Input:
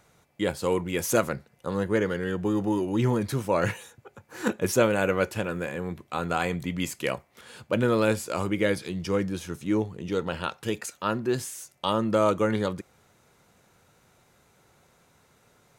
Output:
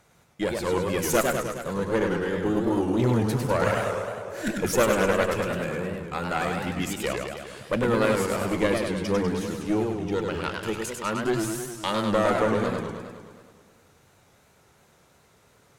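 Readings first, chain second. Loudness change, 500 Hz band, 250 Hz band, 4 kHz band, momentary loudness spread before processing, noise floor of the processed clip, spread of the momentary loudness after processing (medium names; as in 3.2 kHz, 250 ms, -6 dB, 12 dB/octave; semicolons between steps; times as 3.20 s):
+1.5 dB, +1.5 dB, +1.0 dB, +2.0 dB, 10 LU, -60 dBFS, 9 LU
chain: Chebyshev shaper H 4 -13 dB, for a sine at -7 dBFS; spectral replace 3.67–4.54 s, 370–1400 Hz both; modulated delay 103 ms, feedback 66%, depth 194 cents, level -4 dB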